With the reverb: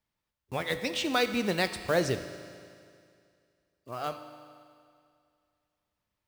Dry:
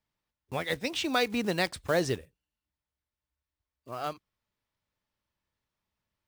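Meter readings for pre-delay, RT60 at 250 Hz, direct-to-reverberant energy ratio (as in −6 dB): 10 ms, 2.3 s, 8.0 dB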